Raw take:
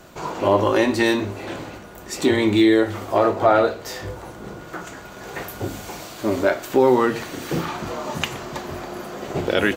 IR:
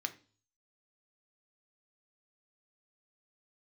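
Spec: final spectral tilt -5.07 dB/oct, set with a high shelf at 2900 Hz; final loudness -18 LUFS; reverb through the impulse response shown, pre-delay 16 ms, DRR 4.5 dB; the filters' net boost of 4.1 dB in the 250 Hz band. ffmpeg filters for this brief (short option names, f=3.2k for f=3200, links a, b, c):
-filter_complex "[0:a]equalizer=f=250:t=o:g=6,highshelf=f=2.9k:g=-3.5,asplit=2[a][b];[1:a]atrim=start_sample=2205,adelay=16[c];[b][c]afir=irnorm=-1:irlink=0,volume=-5.5dB[d];[a][d]amix=inputs=2:normalize=0,volume=-0.5dB"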